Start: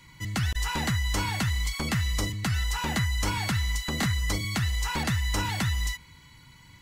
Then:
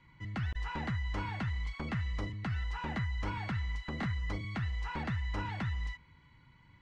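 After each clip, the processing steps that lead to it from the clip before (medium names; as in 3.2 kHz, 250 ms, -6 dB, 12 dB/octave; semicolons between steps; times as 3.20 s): low-pass 2.2 kHz 12 dB/octave; trim -7.5 dB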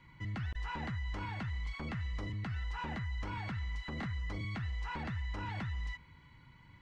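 peak limiter -34.5 dBFS, peak gain reduction 10 dB; trim +2.5 dB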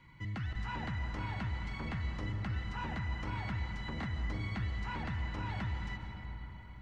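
algorithmic reverb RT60 4.5 s, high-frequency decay 0.45×, pre-delay 105 ms, DRR 4.5 dB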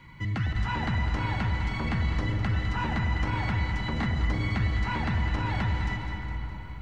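echo whose repeats swap between lows and highs 103 ms, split 830 Hz, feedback 74%, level -6.5 dB; trim +9 dB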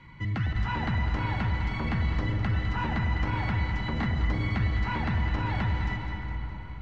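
distance through air 88 m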